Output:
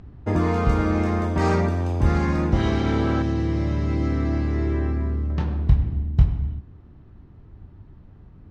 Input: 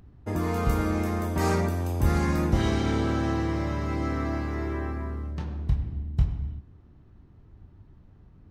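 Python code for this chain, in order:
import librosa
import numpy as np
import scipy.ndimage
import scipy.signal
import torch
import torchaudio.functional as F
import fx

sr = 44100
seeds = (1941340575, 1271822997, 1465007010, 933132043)

y = fx.air_absorb(x, sr, metres=110.0)
y = fx.rider(y, sr, range_db=3, speed_s=0.5)
y = fx.peak_eq(y, sr, hz=1100.0, db=-10.5, octaves=2.2, at=(3.22, 5.3))
y = F.gain(torch.from_numpy(y), 6.0).numpy()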